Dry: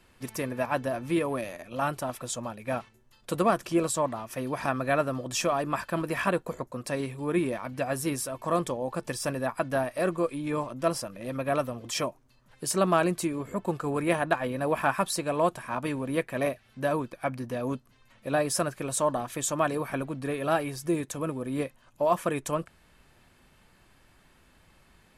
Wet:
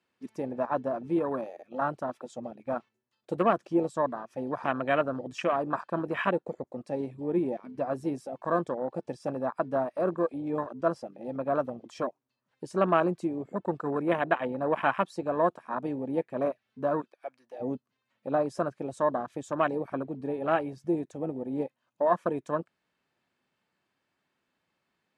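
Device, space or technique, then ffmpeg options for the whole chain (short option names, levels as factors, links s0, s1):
over-cleaned archive recording: -filter_complex "[0:a]asplit=3[s0][s1][s2];[s0]afade=t=out:st=17:d=0.02[s3];[s1]highpass=f=1200:p=1,afade=t=in:st=17:d=0.02,afade=t=out:st=17.59:d=0.02[s4];[s2]afade=t=in:st=17.59:d=0.02[s5];[s3][s4][s5]amix=inputs=3:normalize=0,highpass=180,lowpass=6400,afwtdn=0.0282"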